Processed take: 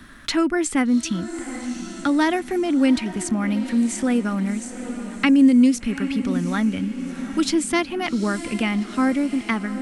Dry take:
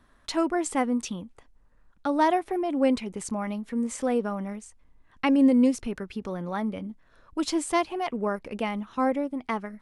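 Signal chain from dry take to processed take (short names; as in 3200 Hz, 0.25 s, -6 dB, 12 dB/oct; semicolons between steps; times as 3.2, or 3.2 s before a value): band shelf 670 Hz -10.5 dB; diffused feedback echo 0.77 s, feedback 49%, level -14.5 dB; three-band squash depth 40%; gain +8.5 dB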